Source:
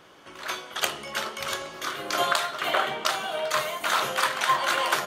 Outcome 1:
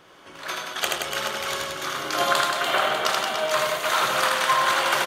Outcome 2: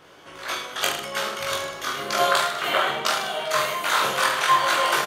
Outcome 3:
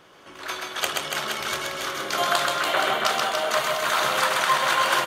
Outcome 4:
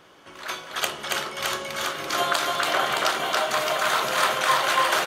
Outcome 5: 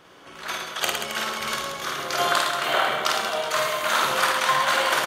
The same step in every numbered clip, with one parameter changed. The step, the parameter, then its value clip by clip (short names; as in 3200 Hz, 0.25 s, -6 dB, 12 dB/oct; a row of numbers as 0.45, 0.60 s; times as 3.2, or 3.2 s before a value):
reverse bouncing-ball echo, first gap: 80, 20, 130, 280, 50 ms